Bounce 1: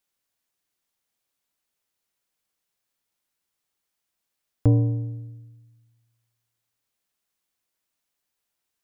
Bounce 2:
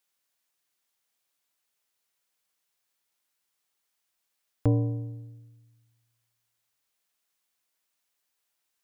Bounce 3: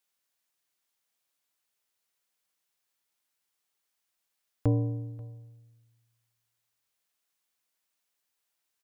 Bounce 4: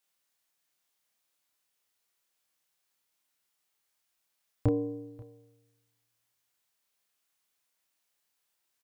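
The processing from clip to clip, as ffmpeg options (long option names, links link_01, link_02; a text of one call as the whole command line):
ffmpeg -i in.wav -af "lowshelf=frequency=410:gain=-8.5,volume=2dB" out.wav
ffmpeg -i in.wav -af "aecho=1:1:536:0.075,volume=-2dB" out.wav
ffmpeg -i in.wav -filter_complex "[0:a]asplit=2[link_01][link_02];[link_02]adelay=30,volume=-2.5dB[link_03];[link_01][link_03]amix=inputs=2:normalize=0" out.wav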